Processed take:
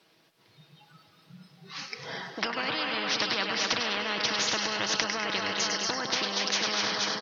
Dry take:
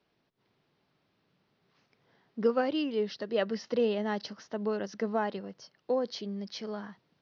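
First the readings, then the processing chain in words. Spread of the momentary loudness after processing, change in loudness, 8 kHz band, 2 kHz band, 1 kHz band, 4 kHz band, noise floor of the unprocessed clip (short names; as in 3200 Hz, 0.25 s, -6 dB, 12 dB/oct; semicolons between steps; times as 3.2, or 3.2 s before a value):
11 LU, +4.5 dB, n/a, +13.5 dB, +6.0 dB, +16.5 dB, -76 dBFS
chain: in parallel at +1 dB: compressor, threshold -36 dBFS, peak gain reduction 14.5 dB; on the sum: comb 6.2 ms, depth 40%; spectral noise reduction 19 dB; high shelf 3400 Hz +10 dB; on a send: feedback echo 0.234 s, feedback 53%, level -11.5 dB; on the sum: treble ducked by the level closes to 1700 Hz, closed at -23 dBFS; low shelf 120 Hz -11.5 dB; thinning echo 0.101 s, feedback 51%, level -12.5 dB; spectral compressor 10:1; gain +5.5 dB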